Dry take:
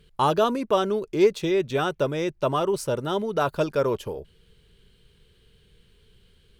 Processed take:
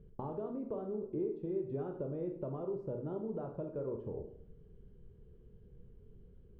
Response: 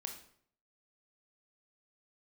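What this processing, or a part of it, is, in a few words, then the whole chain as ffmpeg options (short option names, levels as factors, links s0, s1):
television next door: -filter_complex "[0:a]acompressor=threshold=0.0141:ratio=5,lowpass=490[s0];[1:a]atrim=start_sample=2205[s1];[s0][s1]afir=irnorm=-1:irlink=0,volume=1.68"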